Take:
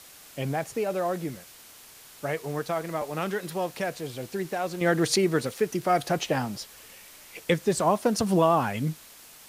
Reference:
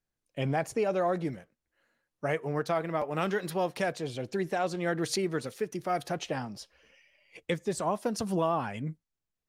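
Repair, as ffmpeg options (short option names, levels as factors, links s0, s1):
-af "afwtdn=0.004,asetnsamples=n=441:p=0,asendcmd='4.81 volume volume -7dB',volume=1"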